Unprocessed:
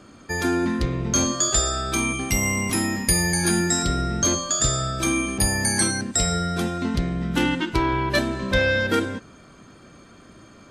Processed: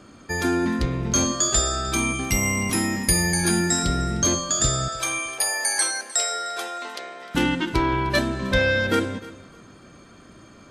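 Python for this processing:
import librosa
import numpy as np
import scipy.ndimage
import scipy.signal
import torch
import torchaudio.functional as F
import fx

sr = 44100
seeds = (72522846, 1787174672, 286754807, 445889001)

y = fx.highpass(x, sr, hz=510.0, slope=24, at=(4.88, 7.35))
y = fx.echo_feedback(y, sr, ms=305, feedback_pct=25, wet_db=-19.0)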